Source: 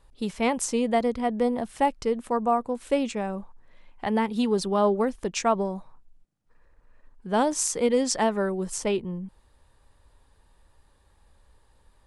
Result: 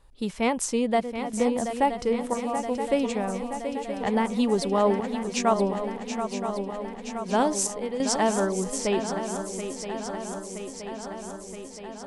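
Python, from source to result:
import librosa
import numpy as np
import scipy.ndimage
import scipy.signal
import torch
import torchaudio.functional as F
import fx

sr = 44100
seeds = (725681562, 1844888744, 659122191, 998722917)

y = fx.chopper(x, sr, hz=0.75, depth_pct=65, duty_pct=75)
y = fx.echo_swing(y, sr, ms=972, ratio=3, feedback_pct=68, wet_db=-9)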